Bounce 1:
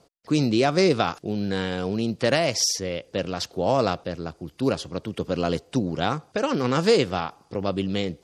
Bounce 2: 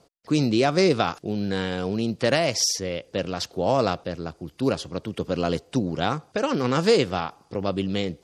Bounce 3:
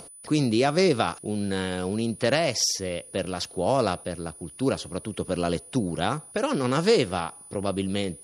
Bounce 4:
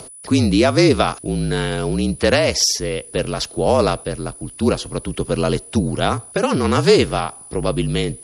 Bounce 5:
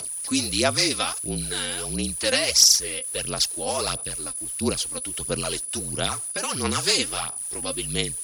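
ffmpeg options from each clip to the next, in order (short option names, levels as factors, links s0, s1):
-af anull
-af "acompressor=mode=upward:threshold=0.0178:ratio=2.5,aeval=exprs='val(0)+0.00708*sin(2*PI*9900*n/s)':c=same,volume=0.841"
-af "afreqshift=-39,volume=2.37"
-af "crystalizer=i=9.5:c=0,aphaser=in_gain=1:out_gain=1:delay=3.9:decay=0.61:speed=1.5:type=sinusoidal,volume=0.15"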